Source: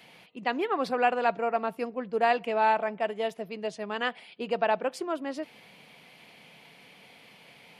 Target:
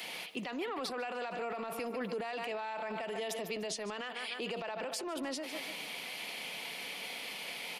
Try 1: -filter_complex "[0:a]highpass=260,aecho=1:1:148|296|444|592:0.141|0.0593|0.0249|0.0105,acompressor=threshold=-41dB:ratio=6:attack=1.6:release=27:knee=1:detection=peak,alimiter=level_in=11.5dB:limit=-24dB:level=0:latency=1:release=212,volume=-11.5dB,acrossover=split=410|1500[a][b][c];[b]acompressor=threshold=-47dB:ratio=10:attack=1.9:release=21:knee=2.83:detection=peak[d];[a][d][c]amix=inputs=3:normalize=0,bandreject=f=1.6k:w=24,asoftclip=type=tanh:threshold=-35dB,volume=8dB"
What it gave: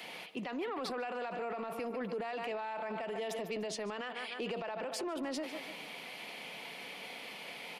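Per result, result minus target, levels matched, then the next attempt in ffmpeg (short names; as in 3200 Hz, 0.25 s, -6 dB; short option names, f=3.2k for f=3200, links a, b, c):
soft clip: distortion +22 dB; 8000 Hz band -4.0 dB
-filter_complex "[0:a]highpass=260,aecho=1:1:148|296|444|592:0.141|0.0593|0.0249|0.0105,acompressor=threshold=-41dB:ratio=6:attack=1.6:release=27:knee=1:detection=peak,alimiter=level_in=11.5dB:limit=-24dB:level=0:latency=1:release=212,volume=-11.5dB,acrossover=split=410|1500[a][b][c];[b]acompressor=threshold=-47dB:ratio=10:attack=1.9:release=21:knee=2.83:detection=peak[d];[a][d][c]amix=inputs=3:normalize=0,bandreject=f=1.6k:w=24,asoftclip=type=tanh:threshold=-23.5dB,volume=8dB"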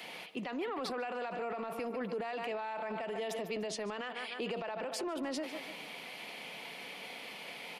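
8000 Hz band -4.0 dB
-filter_complex "[0:a]highpass=260,aecho=1:1:148|296|444|592:0.141|0.0593|0.0249|0.0105,acompressor=threshold=-41dB:ratio=6:attack=1.6:release=27:knee=1:detection=peak,highshelf=f=3k:g=9.5,alimiter=level_in=11.5dB:limit=-24dB:level=0:latency=1:release=212,volume=-11.5dB,acrossover=split=410|1500[a][b][c];[b]acompressor=threshold=-47dB:ratio=10:attack=1.9:release=21:knee=2.83:detection=peak[d];[a][d][c]amix=inputs=3:normalize=0,bandreject=f=1.6k:w=24,asoftclip=type=tanh:threshold=-23.5dB,volume=8dB"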